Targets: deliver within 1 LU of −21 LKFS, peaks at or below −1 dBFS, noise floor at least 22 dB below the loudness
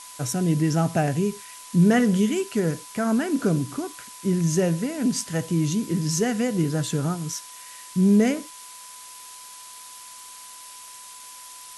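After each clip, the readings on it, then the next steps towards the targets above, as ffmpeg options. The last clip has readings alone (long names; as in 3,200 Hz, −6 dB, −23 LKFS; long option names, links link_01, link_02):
interfering tone 1,000 Hz; level of the tone −47 dBFS; background noise floor −43 dBFS; target noise floor −46 dBFS; integrated loudness −23.5 LKFS; sample peak −9.5 dBFS; target loudness −21.0 LKFS
→ -af "bandreject=frequency=1000:width=30"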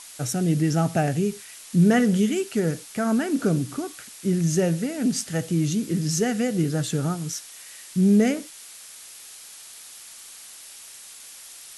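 interfering tone none found; background noise floor −44 dBFS; target noise floor −46 dBFS
→ -af "afftdn=noise_reduction=6:noise_floor=-44"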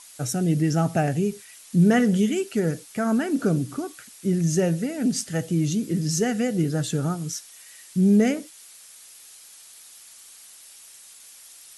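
background noise floor −48 dBFS; integrated loudness −23.5 LKFS; sample peak −9.5 dBFS; target loudness −21.0 LKFS
→ -af "volume=2.5dB"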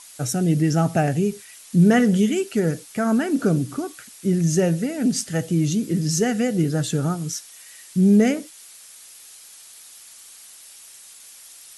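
integrated loudness −21.0 LKFS; sample peak −7.0 dBFS; background noise floor −45 dBFS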